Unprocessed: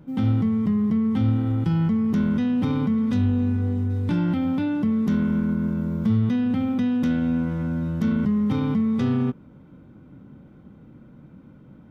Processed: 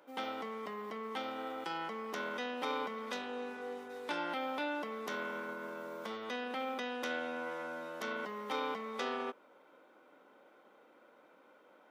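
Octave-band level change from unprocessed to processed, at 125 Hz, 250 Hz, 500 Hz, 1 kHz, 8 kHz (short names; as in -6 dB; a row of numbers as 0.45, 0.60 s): -39.5 dB, -25.0 dB, -4.5 dB, 0.0 dB, n/a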